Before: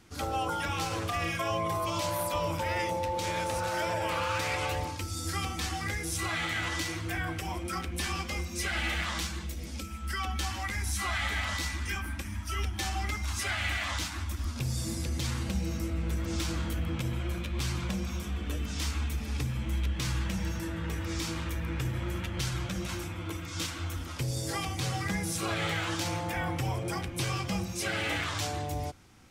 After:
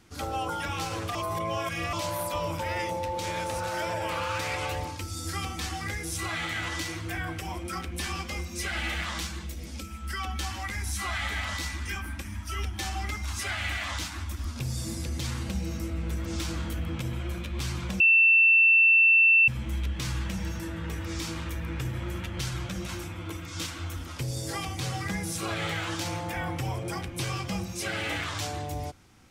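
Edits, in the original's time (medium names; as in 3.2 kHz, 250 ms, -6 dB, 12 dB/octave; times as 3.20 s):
1.15–1.93 s: reverse
18.00–19.48 s: bleep 2.68 kHz -15.5 dBFS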